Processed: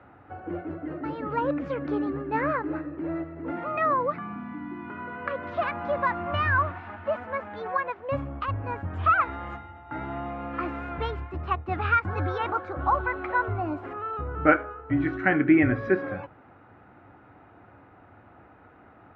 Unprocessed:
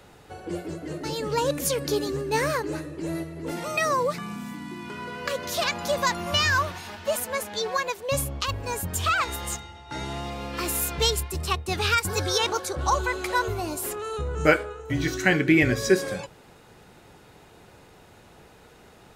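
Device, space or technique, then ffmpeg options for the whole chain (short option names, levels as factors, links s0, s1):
bass cabinet: -af "highpass=64,equalizer=f=98:t=q:w=4:g=7,equalizer=f=160:t=q:w=4:g=-5,equalizer=f=290:t=q:w=4:g=8,equalizer=f=430:t=q:w=4:g=-6,equalizer=f=730:t=q:w=4:g=5,equalizer=f=1300:t=q:w=4:g=7,lowpass=f=2100:w=0.5412,lowpass=f=2100:w=1.3066,volume=0.75"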